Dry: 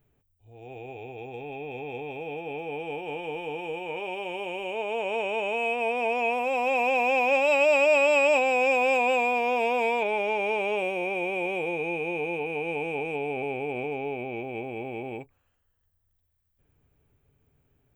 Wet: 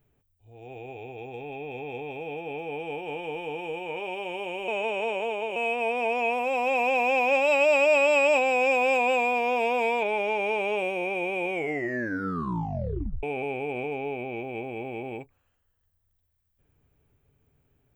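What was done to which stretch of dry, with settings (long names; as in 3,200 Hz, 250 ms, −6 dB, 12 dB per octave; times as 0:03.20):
0:04.68–0:05.56: reverse
0:11.48: tape stop 1.75 s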